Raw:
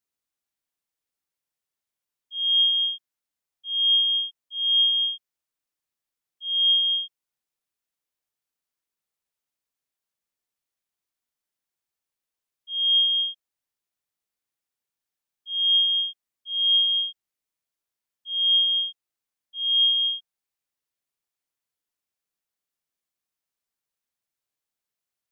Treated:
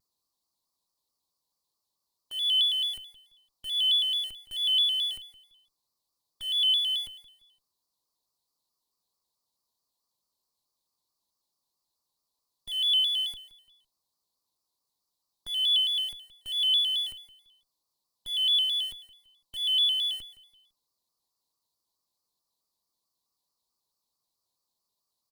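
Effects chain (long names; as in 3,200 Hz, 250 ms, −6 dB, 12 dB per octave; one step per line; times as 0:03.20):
drawn EQ curve 750 Hz 0 dB, 1,100 Hz +8 dB, 1,500 Hz −26 dB, 2,100 Hz −25 dB, 3,000 Hz −13 dB, 4,300 Hz +9 dB, 6,100 Hz 0 dB
in parallel at −10 dB: comparator with hysteresis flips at −54.5 dBFS
on the sum: repeating echo 169 ms, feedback 32%, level −15 dB
pitch modulation by a square or saw wave square 4.6 Hz, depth 100 cents
level +4 dB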